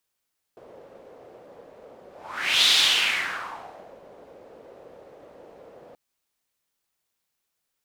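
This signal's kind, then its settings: whoosh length 5.38 s, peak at 2.11 s, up 0.62 s, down 1.39 s, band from 520 Hz, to 3.7 kHz, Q 3.4, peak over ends 29.5 dB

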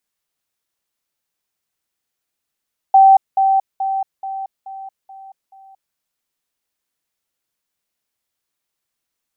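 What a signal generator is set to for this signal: level ladder 775 Hz -5 dBFS, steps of -6 dB, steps 7, 0.23 s 0.20 s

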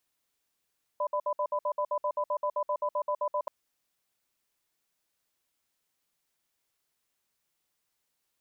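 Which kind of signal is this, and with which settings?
cadence 593 Hz, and 1 kHz, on 0.07 s, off 0.06 s, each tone -29 dBFS 2.48 s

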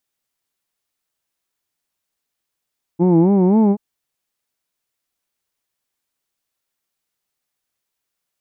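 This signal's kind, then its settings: formant-synthesis vowel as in who'd, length 0.78 s, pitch 165 Hz, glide +5 st, vibrato 3.8 Hz, vibrato depth 1.4 st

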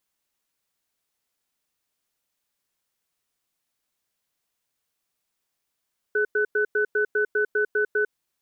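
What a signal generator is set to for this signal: cadence 421 Hz, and 1.5 kHz, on 0.10 s, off 0.10 s, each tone -22 dBFS 1.91 s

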